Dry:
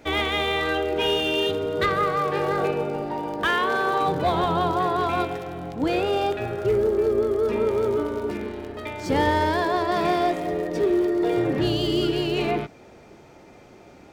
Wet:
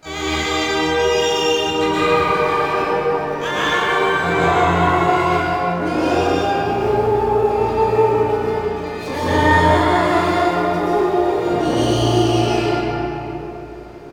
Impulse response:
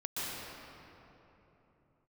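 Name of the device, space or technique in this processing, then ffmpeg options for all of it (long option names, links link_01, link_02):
shimmer-style reverb: -filter_complex "[0:a]asettb=1/sr,asplit=3[link_01][link_02][link_03];[link_01]atrim=end=6.864[link_04];[link_02]atrim=start=6.86:end=7.38,asetpts=PTS-STARTPTS,afade=type=in:duration=0.004:curve=qsin,afade=type=out:start_time=0.516:duration=0.004:curve=qsin,highpass=100[link_05];[link_03]atrim=start=7.376[link_06];[link_04][link_05]acrossfade=duration=0.004:curve1=hsin:curve2=qsin[link_07];[link_07][link_06]acrossfade=duration=0.004:curve1=qsin:curve2=hsin,asplit=2[link_08][link_09];[link_09]adelay=36,volume=-4.5dB[link_10];[link_08][link_10]amix=inputs=2:normalize=0,asplit=2[link_11][link_12];[link_12]asetrate=88200,aresample=44100,atempo=0.5,volume=-6dB[link_13];[link_11][link_13]amix=inputs=2:normalize=0[link_14];[1:a]atrim=start_sample=2205[link_15];[link_14][link_15]afir=irnorm=-1:irlink=0,volume=-1dB"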